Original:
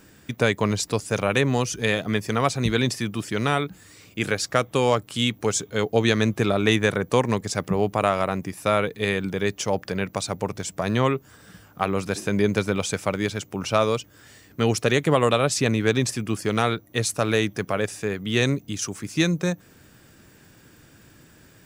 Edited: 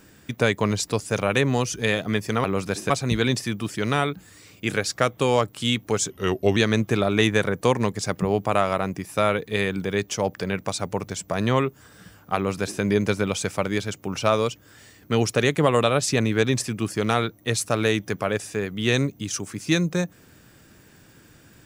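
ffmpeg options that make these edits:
ffmpeg -i in.wav -filter_complex "[0:a]asplit=5[link_01][link_02][link_03][link_04][link_05];[link_01]atrim=end=2.442[link_06];[link_02]atrim=start=11.838:end=12.302[link_07];[link_03]atrim=start=2.438:end=5.644[link_08];[link_04]atrim=start=5.64:end=6.05,asetpts=PTS-STARTPTS,asetrate=38808,aresample=44100[link_09];[link_05]atrim=start=6.046[link_10];[link_06][link_07]acrossfade=duration=0.004:curve1=hsin:curve2=hsin[link_11];[link_11][link_08]acrossfade=duration=0.004:curve1=hsin:curve2=hsin[link_12];[link_12][link_09]acrossfade=duration=0.004:curve1=hsin:curve2=hsin[link_13];[link_13][link_10]acrossfade=duration=0.004:curve1=hsin:curve2=hsin" out.wav

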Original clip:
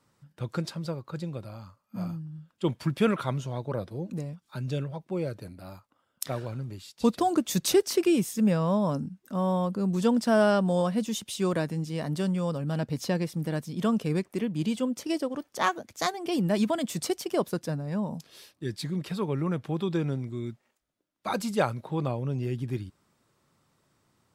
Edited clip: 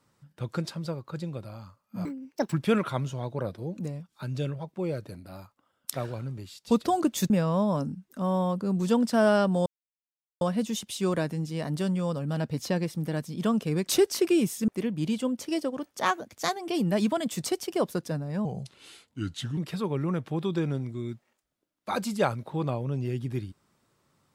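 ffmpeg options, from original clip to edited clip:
ffmpeg -i in.wav -filter_complex "[0:a]asplit=9[link_01][link_02][link_03][link_04][link_05][link_06][link_07][link_08][link_09];[link_01]atrim=end=2.054[link_10];[link_02]atrim=start=2.05:end=2.85,asetpts=PTS-STARTPTS,asetrate=74970,aresample=44100[link_11];[link_03]atrim=start=2.846:end=7.632[link_12];[link_04]atrim=start=8.438:end=10.8,asetpts=PTS-STARTPTS,afade=type=out:start_time=2.358:duration=0.004:curve=hsin,apad=pad_dur=0.75[link_13];[link_05]atrim=start=10.8:end=14.262,asetpts=PTS-STARTPTS,afade=type=in:duration=0.004:curve=hsin[link_14];[link_06]atrim=start=7.628:end=8.442[link_15];[link_07]atrim=start=14.258:end=18.034[link_16];[link_08]atrim=start=18.03:end=18.95,asetpts=PTS-STARTPTS,asetrate=36162,aresample=44100,atrim=end_sample=49478,asetpts=PTS-STARTPTS[link_17];[link_09]atrim=start=18.946[link_18];[link_10][link_11]acrossfade=duration=0.004:curve1=hsin:curve2=hsin[link_19];[link_19][link_12]acrossfade=duration=0.004:curve1=hsin:curve2=hsin[link_20];[link_13][link_14]concat=n=2:v=0:a=1[link_21];[link_20][link_21]acrossfade=duration=0.004:curve1=hsin:curve2=hsin[link_22];[link_22][link_15]acrossfade=duration=0.004:curve1=hsin:curve2=hsin[link_23];[link_23][link_16]acrossfade=duration=0.004:curve1=hsin:curve2=hsin[link_24];[link_24][link_17]acrossfade=duration=0.004:curve1=hsin:curve2=hsin[link_25];[link_25][link_18]acrossfade=duration=0.004:curve1=hsin:curve2=hsin" out.wav

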